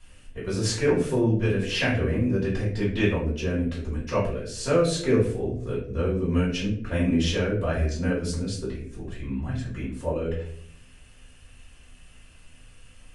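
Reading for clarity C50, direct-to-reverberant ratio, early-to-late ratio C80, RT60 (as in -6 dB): 5.0 dB, -8.5 dB, 9.0 dB, 0.60 s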